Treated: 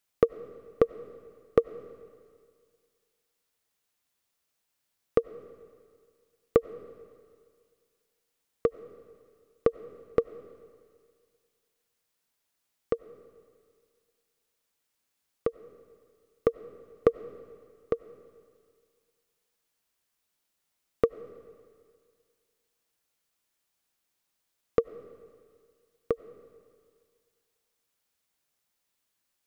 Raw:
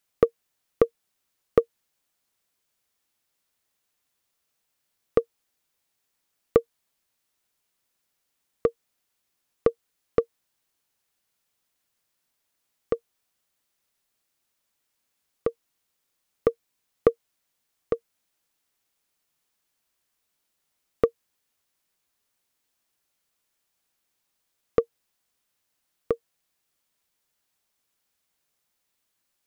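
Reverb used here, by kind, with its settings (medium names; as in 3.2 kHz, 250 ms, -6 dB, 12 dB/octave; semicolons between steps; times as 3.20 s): algorithmic reverb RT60 2 s, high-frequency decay 1×, pre-delay 55 ms, DRR 16 dB; trim -2.5 dB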